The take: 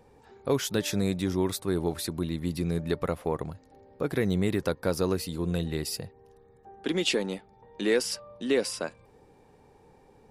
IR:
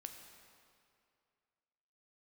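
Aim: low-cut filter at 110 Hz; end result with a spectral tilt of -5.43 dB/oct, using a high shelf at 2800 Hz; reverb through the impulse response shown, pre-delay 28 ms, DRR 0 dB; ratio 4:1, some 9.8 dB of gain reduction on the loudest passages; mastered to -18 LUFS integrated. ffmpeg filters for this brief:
-filter_complex "[0:a]highpass=110,highshelf=f=2.8k:g=-6.5,acompressor=threshold=-33dB:ratio=4,asplit=2[a][b];[1:a]atrim=start_sample=2205,adelay=28[c];[b][c]afir=irnorm=-1:irlink=0,volume=4.5dB[d];[a][d]amix=inputs=2:normalize=0,volume=17.5dB"

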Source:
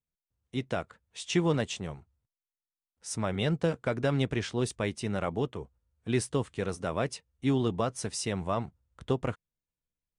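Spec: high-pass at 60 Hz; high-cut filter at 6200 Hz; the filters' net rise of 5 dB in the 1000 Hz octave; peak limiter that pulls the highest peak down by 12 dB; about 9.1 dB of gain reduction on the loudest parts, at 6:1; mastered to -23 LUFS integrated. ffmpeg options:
-af "highpass=60,lowpass=6.2k,equalizer=f=1k:t=o:g=6.5,acompressor=threshold=-31dB:ratio=6,volume=18.5dB,alimiter=limit=-10dB:level=0:latency=1"

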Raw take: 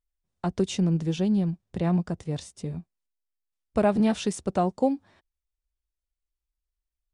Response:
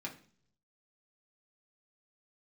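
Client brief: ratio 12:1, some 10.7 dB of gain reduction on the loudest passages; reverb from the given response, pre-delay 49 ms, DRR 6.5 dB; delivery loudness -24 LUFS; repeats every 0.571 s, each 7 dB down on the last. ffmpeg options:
-filter_complex "[0:a]acompressor=threshold=-29dB:ratio=12,aecho=1:1:571|1142|1713|2284|2855:0.447|0.201|0.0905|0.0407|0.0183,asplit=2[a][b];[1:a]atrim=start_sample=2205,adelay=49[c];[b][c]afir=irnorm=-1:irlink=0,volume=-6.5dB[d];[a][d]amix=inputs=2:normalize=0,volume=9.5dB"

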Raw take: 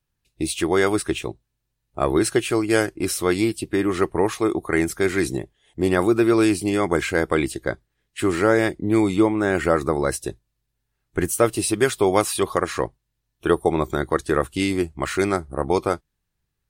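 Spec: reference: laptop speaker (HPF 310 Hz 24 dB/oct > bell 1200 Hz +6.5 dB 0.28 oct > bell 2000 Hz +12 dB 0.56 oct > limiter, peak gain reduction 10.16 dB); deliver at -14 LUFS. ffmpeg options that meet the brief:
-af "highpass=f=310:w=0.5412,highpass=f=310:w=1.3066,equalizer=f=1.2k:t=o:w=0.28:g=6.5,equalizer=f=2k:t=o:w=0.56:g=12,volume=9.5dB,alimiter=limit=-1.5dB:level=0:latency=1"

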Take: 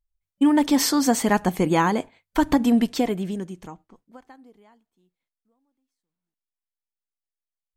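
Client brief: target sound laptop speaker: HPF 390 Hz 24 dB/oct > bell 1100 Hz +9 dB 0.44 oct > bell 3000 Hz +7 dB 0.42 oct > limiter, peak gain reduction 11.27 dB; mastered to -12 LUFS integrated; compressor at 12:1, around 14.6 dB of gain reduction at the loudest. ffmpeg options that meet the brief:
-af "acompressor=threshold=-29dB:ratio=12,highpass=f=390:w=0.5412,highpass=f=390:w=1.3066,equalizer=f=1.1k:t=o:w=0.44:g=9,equalizer=f=3k:t=o:w=0.42:g=7,volume=29dB,alimiter=limit=0dB:level=0:latency=1"

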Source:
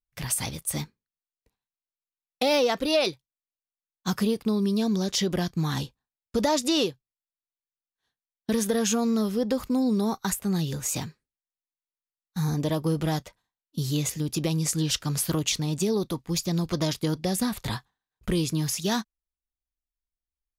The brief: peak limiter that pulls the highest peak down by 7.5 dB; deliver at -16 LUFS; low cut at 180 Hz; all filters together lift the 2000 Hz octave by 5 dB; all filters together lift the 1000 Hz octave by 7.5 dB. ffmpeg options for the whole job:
-af "highpass=180,equalizer=f=1k:t=o:g=8.5,equalizer=f=2k:t=o:g=4,volume=11.5dB,alimiter=limit=-4dB:level=0:latency=1"

